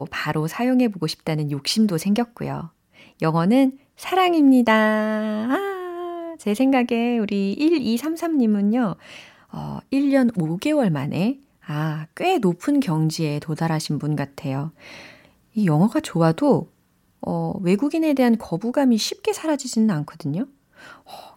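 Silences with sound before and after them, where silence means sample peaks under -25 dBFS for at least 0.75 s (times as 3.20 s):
14.68–15.57 s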